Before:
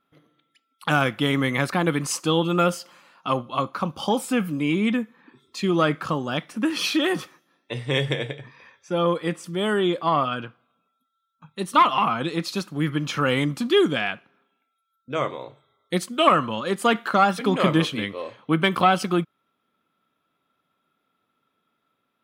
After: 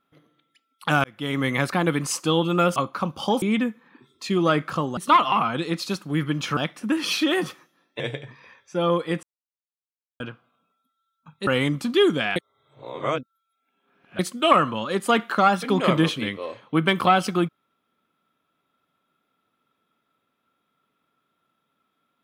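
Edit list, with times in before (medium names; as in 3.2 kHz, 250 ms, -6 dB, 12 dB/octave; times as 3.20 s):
1.04–1.49 s: fade in
2.76–3.56 s: delete
4.22–4.75 s: delete
7.73–8.16 s: delete
9.39–10.36 s: mute
11.63–13.23 s: move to 6.30 s
14.12–15.95 s: reverse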